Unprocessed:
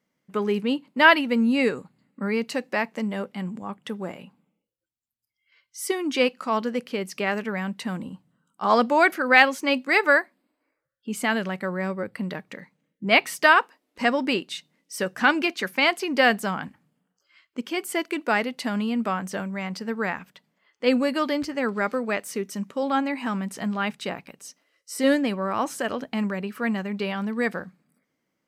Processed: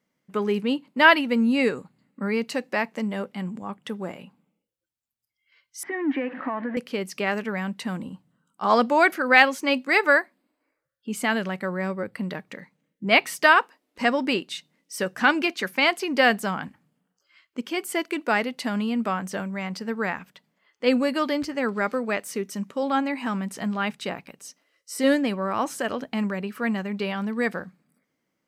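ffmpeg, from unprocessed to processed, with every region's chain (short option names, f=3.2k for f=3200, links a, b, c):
-filter_complex "[0:a]asettb=1/sr,asplit=3[a][b][c];[a]atrim=end=5.834[d];[b]atrim=start=5.83:end=6.77,asetpts=PTS-STARTPTS,afade=t=in:d=0.004:c=qsin,afade=t=out:st=0.936:d=0.004:c=qsin,aeval=exprs='val(0)+0.5*0.0282*sgn(val(0))':c=same,acompressor=threshold=-24dB:ratio=4:attack=3.2:release=140:knee=1:detection=peak,highpass=260,equalizer=f=280:t=q:w=4:g=10,equalizer=f=420:t=q:w=4:g=-8,equalizer=f=1.3k:t=q:w=4:g=-6,equalizer=f=1.8k:t=q:w=4:g=10,lowpass=f=2k:w=0.5412,lowpass=f=2k:w=1.3066[e];[c]atrim=start=6.766[f];[d][e]acrossfade=d=0.004:c1=hsin:c2=qsin[g];[g][f]acrossfade=d=0.004:c1=qsin:c2=hsin"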